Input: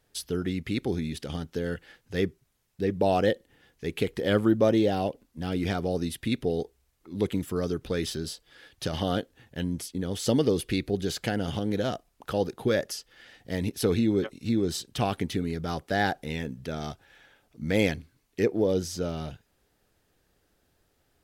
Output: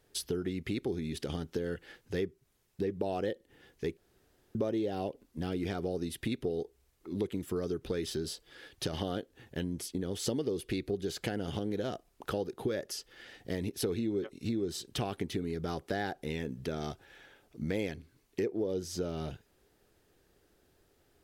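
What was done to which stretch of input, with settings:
0:03.97–0:04.55: fill with room tone
whole clip: parametric band 380 Hz +6.5 dB 0.59 octaves; downward compressor 4 to 1, threshold −32 dBFS

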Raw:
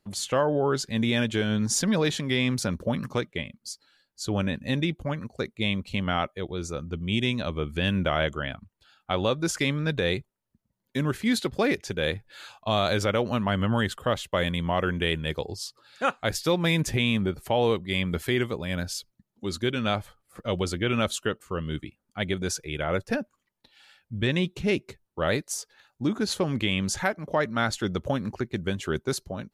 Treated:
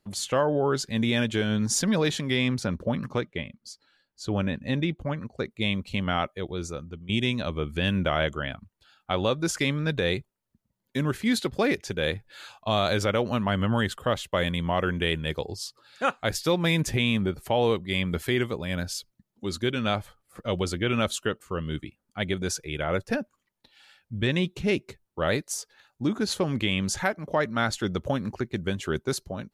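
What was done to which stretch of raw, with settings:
0:02.48–0:05.51: low-pass filter 3,400 Hz 6 dB per octave
0:06.62–0:07.09: fade out, to −14.5 dB

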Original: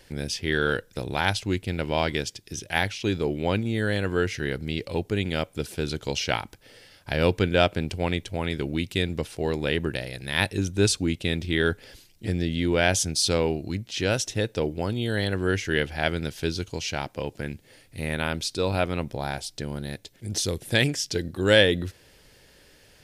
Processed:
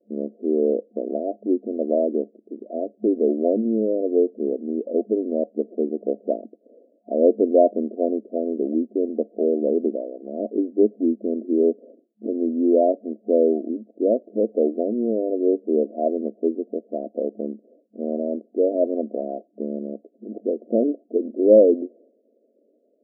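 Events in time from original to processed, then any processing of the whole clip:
0:10.74–0:11.36: high-frequency loss of the air 460 metres
whole clip: downward expander −47 dBFS; brick-wall band-pass 210–710 Hz; level +7.5 dB

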